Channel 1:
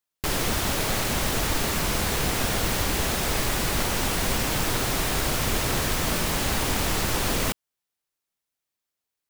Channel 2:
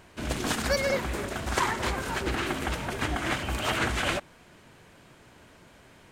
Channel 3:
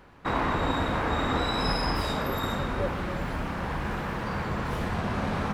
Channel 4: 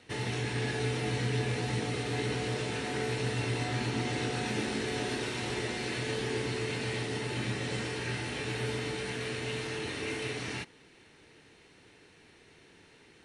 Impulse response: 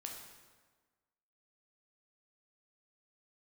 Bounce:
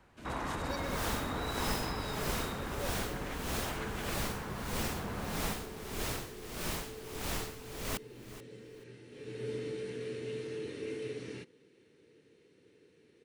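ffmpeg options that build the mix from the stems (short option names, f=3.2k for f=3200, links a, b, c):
-filter_complex "[0:a]aeval=exprs='val(0)*pow(10,-18*(0.5-0.5*cos(2*PI*1.6*n/s))/20)':c=same,adelay=450,volume=-10dB,asplit=2[a][b];[b]volume=-14.5dB[c];[1:a]volume=-16dB[d];[2:a]volume=-11dB,asplit=2[e][f];[f]volume=-9.5dB[g];[3:a]highpass=110,lowshelf=f=590:t=q:w=3:g=7,adelay=800,volume=-12.5dB,afade=t=in:st=9.09:d=0.45:silence=0.281838[h];[c][g]amix=inputs=2:normalize=0,aecho=0:1:432|864|1296:1|0.18|0.0324[i];[a][d][e][h][i]amix=inputs=5:normalize=0"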